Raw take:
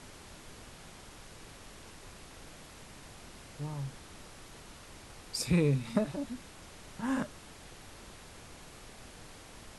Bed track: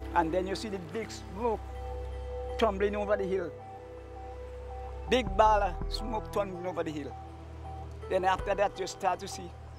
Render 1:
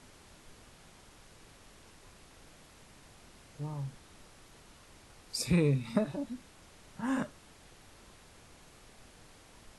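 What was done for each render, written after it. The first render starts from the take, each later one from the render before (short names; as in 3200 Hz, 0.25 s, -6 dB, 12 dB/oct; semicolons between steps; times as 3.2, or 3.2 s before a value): noise print and reduce 6 dB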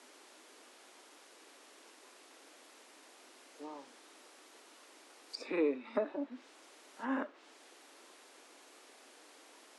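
steep high-pass 270 Hz 48 dB/oct; treble ducked by the level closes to 2200 Hz, closed at -36.5 dBFS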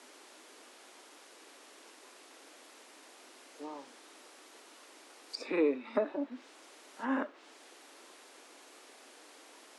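gain +3 dB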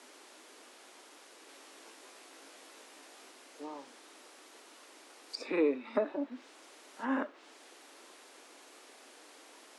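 1.47–3.31 doubler 18 ms -4.5 dB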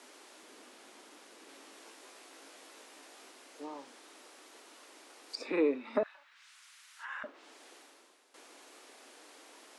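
0.43–1.74 tone controls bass +11 dB, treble -1 dB; 6.03–7.24 HPF 1300 Hz 24 dB/oct; 7.77–8.34 fade out quadratic, to -12 dB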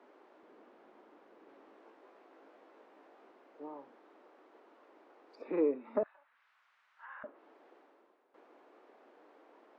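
Bessel low-pass 880 Hz, order 2; bell 260 Hz -4.5 dB 0.36 oct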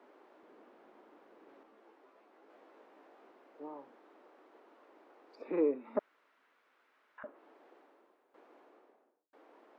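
1.63–2.5 ensemble effect; 5.99–7.18 room tone; 8.57–9.33 studio fade out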